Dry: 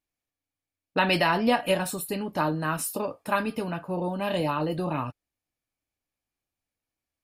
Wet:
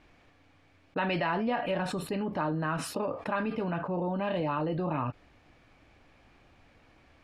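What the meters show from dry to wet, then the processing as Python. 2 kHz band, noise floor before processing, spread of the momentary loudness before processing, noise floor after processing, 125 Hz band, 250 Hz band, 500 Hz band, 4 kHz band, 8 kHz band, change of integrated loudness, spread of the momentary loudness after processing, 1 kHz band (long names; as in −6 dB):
−6.0 dB, below −85 dBFS, 9 LU, −62 dBFS, −2.0 dB, −3.0 dB, −4.0 dB, −9.5 dB, −11.0 dB, −4.5 dB, 4 LU, −4.5 dB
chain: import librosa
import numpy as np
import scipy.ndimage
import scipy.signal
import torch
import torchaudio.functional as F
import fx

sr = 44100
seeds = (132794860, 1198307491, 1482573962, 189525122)

y = scipy.signal.sosfilt(scipy.signal.butter(2, 2500.0, 'lowpass', fs=sr, output='sos'), x)
y = fx.env_flatten(y, sr, amount_pct=70)
y = F.gain(torch.from_numpy(y), -8.5).numpy()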